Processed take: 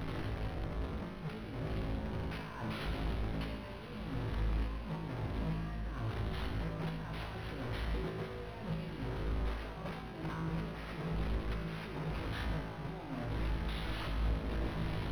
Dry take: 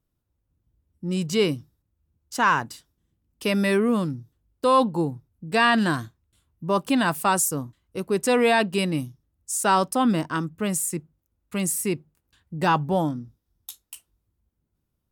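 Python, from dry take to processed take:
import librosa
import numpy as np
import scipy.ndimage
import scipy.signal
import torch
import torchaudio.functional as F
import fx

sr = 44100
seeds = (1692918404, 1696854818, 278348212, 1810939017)

y = fx.delta_mod(x, sr, bps=64000, step_db=-25.5)
y = fx.over_compress(y, sr, threshold_db=-32.0, ratio=-1.0)
y = fx.high_shelf(y, sr, hz=5200.0, db=-8.0)
y = fx.comb_fb(y, sr, f0_hz=54.0, decay_s=1.2, harmonics='all', damping=0.0, mix_pct=90)
y = fx.echo_diffused(y, sr, ms=1215, feedback_pct=65, wet_db=-8.0)
y = np.interp(np.arange(len(y)), np.arange(len(y))[::6], y[::6])
y = y * librosa.db_to_amplitude(2.5)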